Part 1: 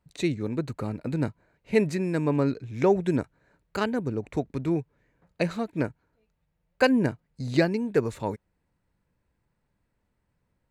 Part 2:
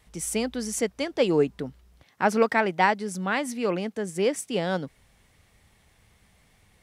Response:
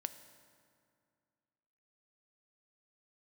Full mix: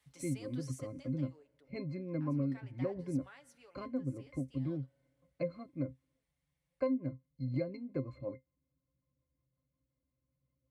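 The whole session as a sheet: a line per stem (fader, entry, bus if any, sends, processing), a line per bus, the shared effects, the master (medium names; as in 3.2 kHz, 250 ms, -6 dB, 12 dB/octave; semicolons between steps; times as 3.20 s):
+3.0 dB, 0.00 s, no send, treble shelf 4.2 kHz -7 dB; rotary cabinet horn 5.5 Hz; pitch-class resonator C, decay 0.12 s
0.68 s -14.5 dB -> 1.41 s -21.5 dB -> 2.26 s -21.5 dB -> 2.46 s -14 dB -> 3.30 s -14 dB -> 3.80 s -21.5 dB, 0.00 s, send -12 dB, high-pass 950 Hz 6 dB/octave; comb 7.1 ms, depth 64%; compression 6:1, threshold -31 dBFS, peak gain reduction 13 dB; auto duck -11 dB, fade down 1.05 s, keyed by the first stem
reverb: on, RT60 2.2 s, pre-delay 3 ms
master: high-pass 140 Hz 6 dB/octave; compression 6:1, threshold -30 dBFS, peak gain reduction 11 dB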